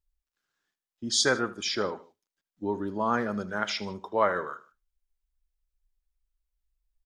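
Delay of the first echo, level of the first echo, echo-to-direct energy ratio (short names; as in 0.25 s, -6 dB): 77 ms, -17.5 dB, -17.0 dB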